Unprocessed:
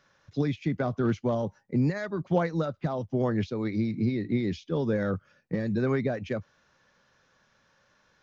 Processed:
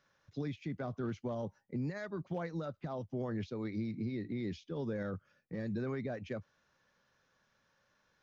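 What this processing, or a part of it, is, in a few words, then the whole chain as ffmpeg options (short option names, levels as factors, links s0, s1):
clipper into limiter: -af "asoftclip=type=hard:threshold=0.178,alimiter=limit=0.0841:level=0:latency=1:release=62,volume=0.376"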